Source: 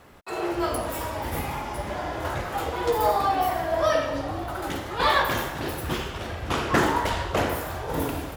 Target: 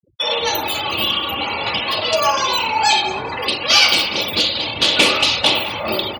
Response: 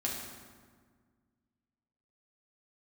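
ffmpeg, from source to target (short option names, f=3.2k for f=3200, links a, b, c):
-filter_complex "[0:a]afftfilt=real='re*gte(hypot(re,im),0.0158)':imag='im*gte(hypot(re,im),0.0158)':win_size=1024:overlap=0.75,highpass=75,highshelf=f=1.7k:t=q:w=3:g=10,aecho=1:1:4.7:0.46,asplit=2[a][b];[b]adelay=275,lowpass=f=3.8k:p=1,volume=-20dB,asplit=2[c][d];[d]adelay=275,lowpass=f=3.8k:p=1,volume=0.25[e];[a][c][e]amix=inputs=3:normalize=0,asplit=2[f][g];[g]acompressor=threshold=-30dB:ratio=6,volume=-0.5dB[h];[f][h]amix=inputs=2:normalize=0,asetrate=59535,aresample=44100,acrossover=split=240|6600[i][j][k];[j]acontrast=27[l];[i][l][k]amix=inputs=3:normalize=0,volume=-1.5dB"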